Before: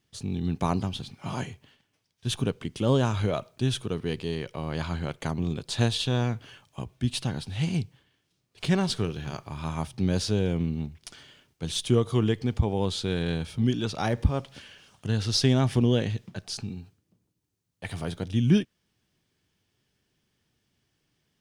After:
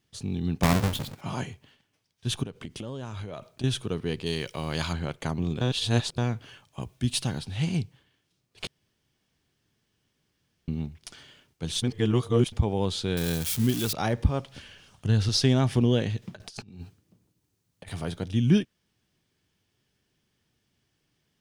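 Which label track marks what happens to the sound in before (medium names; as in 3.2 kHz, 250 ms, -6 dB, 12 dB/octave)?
0.630000	1.210000	square wave that keeps the level
2.430000	3.640000	compression 20:1, threshold -32 dBFS
4.260000	4.930000	treble shelf 2.6 kHz +12 dB
5.610000	6.180000	reverse
6.820000	7.390000	treble shelf 5.4 kHz +8 dB
8.670000	10.680000	room tone
11.820000	12.520000	reverse
13.170000	13.930000	zero-crossing glitches of -22 dBFS
14.530000	15.290000	bass shelf 90 Hz +12 dB
16.220000	17.890000	compressor with a negative ratio -41 dBFS, ratio -0.5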